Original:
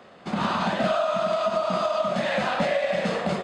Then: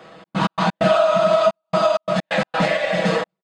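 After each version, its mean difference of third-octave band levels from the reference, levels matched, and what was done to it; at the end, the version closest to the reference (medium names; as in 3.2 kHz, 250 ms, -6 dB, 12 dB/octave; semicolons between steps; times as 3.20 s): 7.0 dB: trance gate "xx.x.x.xxxxxx.." 130 bpm -60 dB; comb 6.2 ms, depth 92%; trim +4 dB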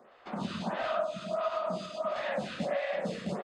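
4.0 dB: on a send: delay 126 ms -10.5 dB; on the sum: lamp-driven phase shifter 1.5 Hz; trim -6.5 dB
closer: second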